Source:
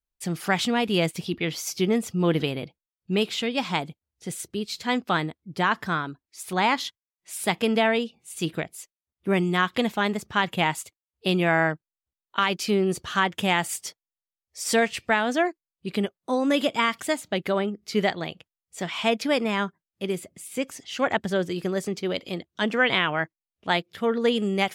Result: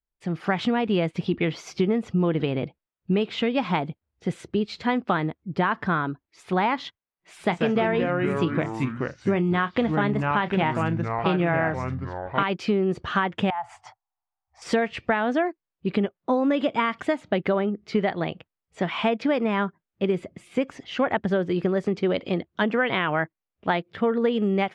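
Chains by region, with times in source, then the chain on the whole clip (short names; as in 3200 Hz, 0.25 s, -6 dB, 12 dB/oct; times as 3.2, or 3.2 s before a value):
7.4–12.43 doubler 29 ms -14 dB + echoes that change speed 0.123 s, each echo -4 st, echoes 3, each echo -6 dB
13.5–14.62 EQ curve 120 Hz 0 dB, 180 Hz -22 dB, 500 Hz -23 dB, 760 Hz +14 dB, 1200 Hz +2 dB, 2500 Hz -8 dB, 3800 Hz -12 dB, 6600 Hz -8 dB, 10000 Hz -11 dB, 15000 Hz -21 dB + compressor 4:1, threshold -32 dBFS
whole clip: AGC gain up to 9 dB; Bessel low-pass 1800 Hz, order 2; compressor, threshold -19 dBFS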